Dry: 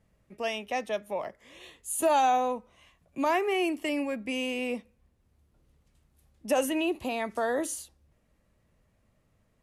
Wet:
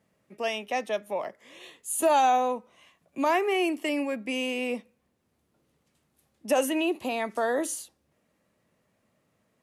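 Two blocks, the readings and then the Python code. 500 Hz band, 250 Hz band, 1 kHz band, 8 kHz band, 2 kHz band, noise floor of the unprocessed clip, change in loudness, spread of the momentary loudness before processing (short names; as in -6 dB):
+2.0 dB, +1.5 dB, +2.0 dB, +2.0 dB, +2.0 dB, -70 dBFS, +2.0 dB, 13 LU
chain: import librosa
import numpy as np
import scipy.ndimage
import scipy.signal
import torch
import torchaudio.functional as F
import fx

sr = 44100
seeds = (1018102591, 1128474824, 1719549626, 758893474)

y = scipy.signal.sosfilt(scipy.signal.butter(2, 180.0, 'highpass', fs=sr, output='sos'), x)
y = F.gain(torch.from_numpy(y), 2.0).numpy()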